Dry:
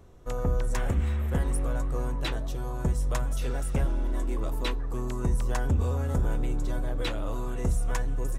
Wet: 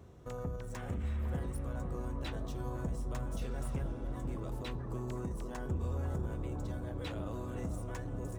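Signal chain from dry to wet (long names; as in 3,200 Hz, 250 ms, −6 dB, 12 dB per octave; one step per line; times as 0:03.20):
running median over 3 samples
brickwall limiter −29.5 dBFS, peak gain reduction 11 dB
high-pass filter 110 Hz 12 dB per octave
low-shelf EQ 150 Hz +11 dB
on a send: bucket-brigade delay 501 ms, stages 4,096, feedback 77%, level −6.5 dB
on the sum: level −2.5 dB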